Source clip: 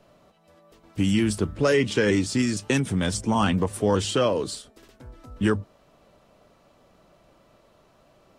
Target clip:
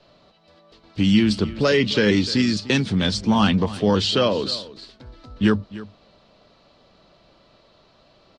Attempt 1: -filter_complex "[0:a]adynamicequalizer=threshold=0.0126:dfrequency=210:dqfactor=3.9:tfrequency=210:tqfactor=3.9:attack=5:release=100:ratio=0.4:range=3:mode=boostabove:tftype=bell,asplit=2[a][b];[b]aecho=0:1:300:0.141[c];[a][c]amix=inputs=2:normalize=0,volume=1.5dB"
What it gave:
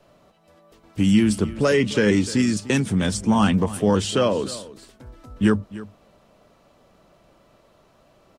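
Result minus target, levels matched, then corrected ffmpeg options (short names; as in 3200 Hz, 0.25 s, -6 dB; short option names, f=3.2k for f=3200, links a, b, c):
4000 Hz band -6.5 dB
-filter_complex "[0:a]adynamicequalizer=threshold=0.0126:dfrequency=210:dqfactor=3.9:tfrequency=210:tqfactor=3.9:attack=5:release=100:ratio=0.4:range=3:mode=boostabove:tftype=bell,lowpass=f=4.3k:t=q:w=3.8,asplit=2[a][b];[b]aecho=0:1:300:0.141[c];[a][c]amix=inputs=2:normalize=0,volume=1.5dB"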